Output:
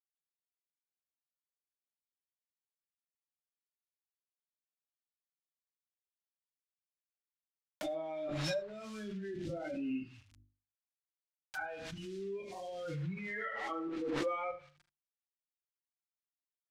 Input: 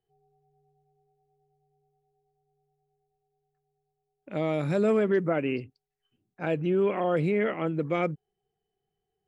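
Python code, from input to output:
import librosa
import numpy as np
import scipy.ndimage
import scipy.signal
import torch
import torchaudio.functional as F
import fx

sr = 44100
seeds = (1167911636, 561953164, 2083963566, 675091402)

p1 = fx.bin_expand(x, sr, power=3.0)
p2 = fx.peak_eq(p1, sr, hz=5500.0, db=12.5, octaves=0.45)
p3 = fx.level_steps(p2, sr, step_db=21)
p4 = fx.peak_eq(p3, sr, hz=560.0, db=3.0, octaves=0.3)
p5 = fx.echo_feedback(p4, sr, ms=89, feedback_pct=27, wet_db=-22.0)
p6 = fx.stretch_vocoder_free(p5, sr, factor=1.8)
p7 = fx.quant_companded(p6, sr, bits=6)
p8 = fx.phaser_stages(p7, sr, stages=2, low_hz=110.0, high_hz=1100.0, hz=0.34, feedback_pct=25)
p9 = fx.env_lowpass_down(p8, sr, base_hz=1500.0, full_db=-44.5)
p10 = fx.hum_notches(p9, sr, base_hz=50, count=7)
p11 = p10 + fx.room_early_taps(p10, sr, ms=(42, 76), db=(-13.0, -13.0), dry=0)
p12 = fx.pre_swell(p11, sr, db_per_s=21.0)
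y = p12 * librosa.db_to_amplitude(8.5)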